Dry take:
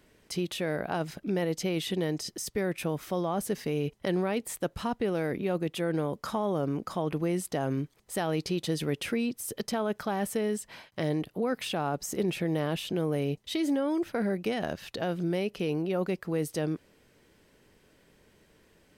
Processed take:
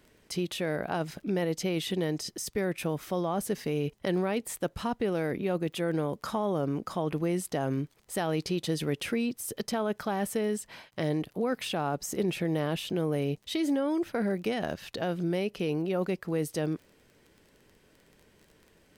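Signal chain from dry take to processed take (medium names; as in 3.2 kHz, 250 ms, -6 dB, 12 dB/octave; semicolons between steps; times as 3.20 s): crackle 18 per s -44 dBFS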